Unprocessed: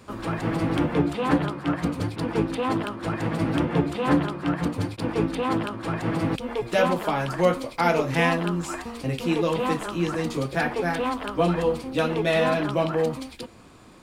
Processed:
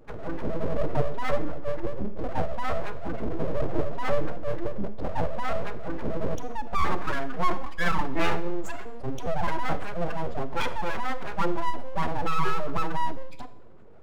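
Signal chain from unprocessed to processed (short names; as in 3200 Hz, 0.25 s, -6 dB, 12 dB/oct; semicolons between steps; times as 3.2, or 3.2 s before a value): spectral contrast raised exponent 2.6; full-wave rectifier; Schroeder reverb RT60 0.7 s, combs from 31 ms, DRR 13 dB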